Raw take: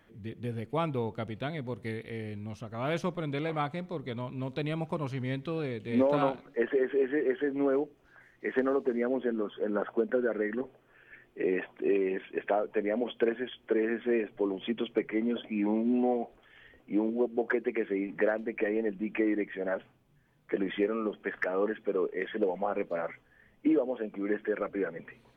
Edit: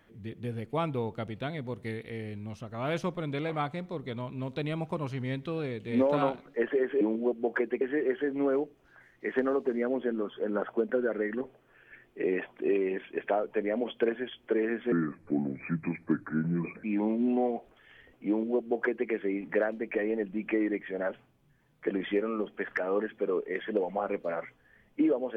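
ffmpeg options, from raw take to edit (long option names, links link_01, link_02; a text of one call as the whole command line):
ffmpeg -i in.wav -filter_complex "[0:a]asplit=5[link_01][link_02][link_03][link_04][link_05];[link_01]atrim=end=7.012[link_06];[link_02]atrim=start=16.948:end=17.752[link_07];[link_03]atrim=start=7.008:end=14.124[link_08];[link_04]atrim=start=14.12:end=15.5,asetpts=PTS-STARTPTS,asetrate=31752,aresample=44100[link_09];[link_05]atrim=start=15.496[link_10];[link_06][link_07]acrossfade=duration=0.004:curve1=hsin:curve2=hsin[link_11];[link_11][link_08]acrossfade=duration=0.004:curve1=hsin:curve2=hsin[link_12];[link_12][link_09]acrossfade=duration=0.004:curve1=hsin:curve2=hsin[link_13];[link_13][link_10]acrossfade=duration=0.004:curve1=hsin:curve2=hsin" out.wav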